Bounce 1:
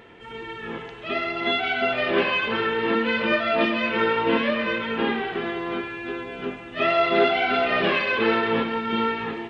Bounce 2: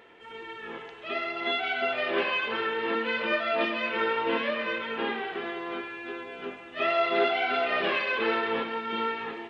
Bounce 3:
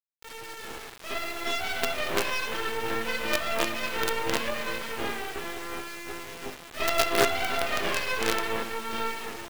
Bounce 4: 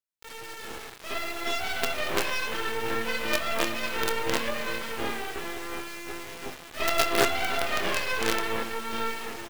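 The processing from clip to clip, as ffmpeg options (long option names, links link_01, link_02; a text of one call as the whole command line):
ffmpeg -i in.wav -af "bass=frequency=250:gain=-12,treble=frequency=4000:gain=-1,volume=-4.5dB" out.wav
ffmpeg -i in.wav -af "acrusher=bits=4:dc=4:mix=0:aa=0.000001,volume=2.5dB" out.wav
ffmpeg -i in.wav -filter_complex "[0:a]asplit=2[link_01][link_02];[link_02]adelay=26,volume=-12.5dB[link_03];[link_01][link_03]amix=inputs=2:normalize=0" out.wav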